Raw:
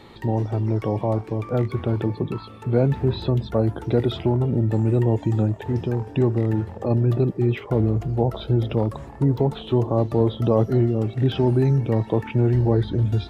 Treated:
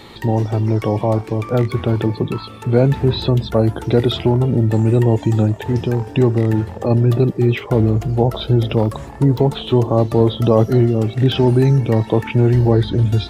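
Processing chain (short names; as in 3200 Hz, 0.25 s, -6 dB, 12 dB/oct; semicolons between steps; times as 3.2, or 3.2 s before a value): high shelf 2700 Hz +8 dB; gain +5.5 dB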